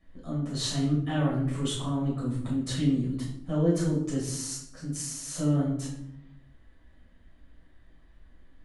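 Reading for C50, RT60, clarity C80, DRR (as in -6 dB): 4.0 dB, 0.75 s, 7.5 dB, -8.0 dB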